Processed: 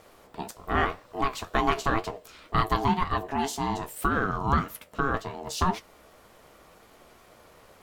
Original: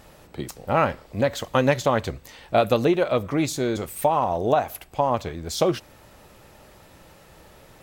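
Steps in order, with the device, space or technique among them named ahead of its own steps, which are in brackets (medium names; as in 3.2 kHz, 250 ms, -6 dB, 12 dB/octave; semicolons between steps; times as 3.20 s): alien voice (ring modulator 550 Hz; flange 1.9 Hz, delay 8.6 ms, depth 7.2 ms, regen +57%); trim +2.5 dB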